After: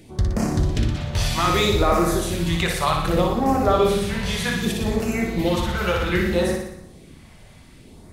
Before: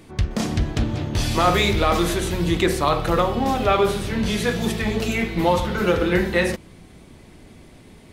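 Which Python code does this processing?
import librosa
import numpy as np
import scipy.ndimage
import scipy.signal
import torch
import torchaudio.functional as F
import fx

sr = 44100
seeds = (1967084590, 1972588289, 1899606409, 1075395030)

y = fx.filter_lfo_notch(x, sr, shape='sine', hz=0.64, low_hz=280.0, high_hz=3600.0, q=0.78)
y = fx.room_flutter(y, sr, wall_m=10.2, rt60_s=0.76)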